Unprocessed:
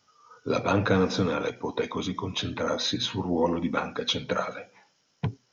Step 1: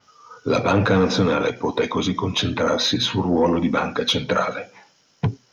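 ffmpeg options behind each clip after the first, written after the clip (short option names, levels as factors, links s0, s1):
-filter_complex "[0:a]asplit=2[s0][s1];[s1]alimiter=limit=0.1:level=0:latency=1:release=24,volume=1.26[s2];[s0][s2]amix=inputs=2:normalize=0,acontrast=87,adynamicequalizer=threshold=0.0355:dfrequency=5000:dqfactor=0.7:tfrequency=5000:tqfactor=0.7:attack=5:release=100:ratio=0.375:range=2:mode=cutabove:tftype=highshelf,volume=0.562"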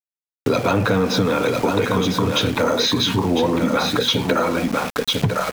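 -af "aecho=1:1:1001:0.501,aeval=exprs='val(0)*gte(abs(val(0)),0.0299)':c=same,acompressor=threshold=0.0501:ratio=4,volume=2.82"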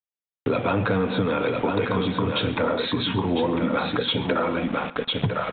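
-af "aresample=8000,aresample=44100,aecho=1:1:136|272|408:0.112|0.046|0.0189,volume=0.596"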